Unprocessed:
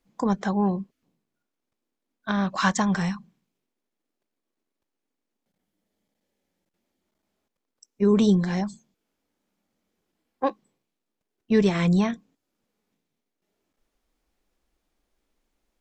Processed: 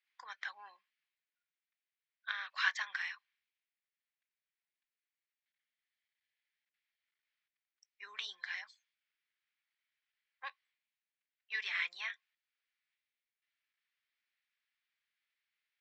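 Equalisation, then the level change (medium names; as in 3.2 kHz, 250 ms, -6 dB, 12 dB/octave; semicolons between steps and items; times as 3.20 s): ladder high-pass 1.6 kHz, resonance 45%; low-pass 4.6 kHz 24 dB/octave; +2.0 dB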